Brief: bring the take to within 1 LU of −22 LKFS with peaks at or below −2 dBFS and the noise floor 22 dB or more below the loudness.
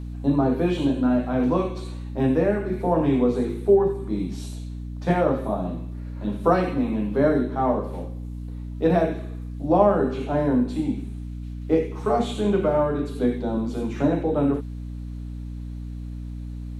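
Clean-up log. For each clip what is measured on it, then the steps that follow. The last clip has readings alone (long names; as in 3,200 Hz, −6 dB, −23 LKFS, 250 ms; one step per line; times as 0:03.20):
mains hum 60 Hz; hum harmonics up to 300 Hz; level of the hum −30 dBFS; integrated loudness −23.5 LKFS; sample peak −5.0 dBFS; target loudness −22.0 LKFS
→ hum removal 60 Hz, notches 5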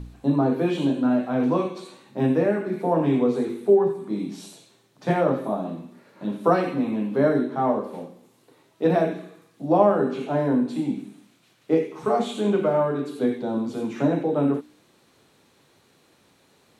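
mains hum none found; integrated loudness −23.5 LKFS; sample peak −5.0 dBFS; target loudness −22.0 LKFS
→ level +1.5 dB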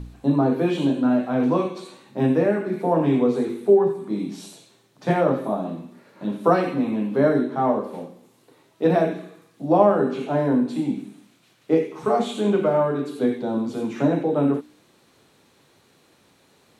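integrated loudness −22.0 LKFS; sample peak −3.5 dBFS; background noise floor −59 dBFS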